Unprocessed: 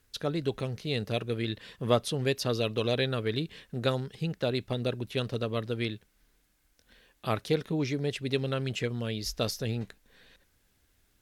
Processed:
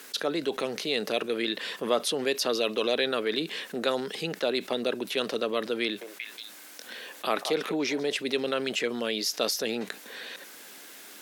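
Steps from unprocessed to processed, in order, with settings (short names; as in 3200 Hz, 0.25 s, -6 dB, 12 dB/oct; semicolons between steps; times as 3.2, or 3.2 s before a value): Bessel high-pass 360 Hz, order 6; 5.83–8.17 delay with a stepping band-pass 0.182 s, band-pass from 770 Hz, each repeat 1.4 oct, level -10 dB; fast leveller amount 50%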